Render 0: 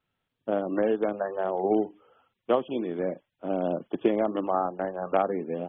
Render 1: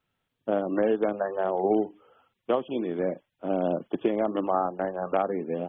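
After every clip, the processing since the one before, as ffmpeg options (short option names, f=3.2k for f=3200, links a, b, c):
-af "alimiter=limit=-14.5dB:level=0:latency=1:release=355,volume=1.5dB"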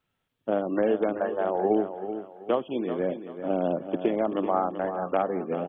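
-af "aecho=1:1:384|768|1152|1536:0.316|0.101|0.0324|0.0104"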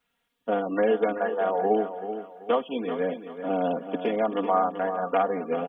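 -af "lowshelf=f=430:g=-9,aecho=1:1:4.2:0.99,volume=2dB"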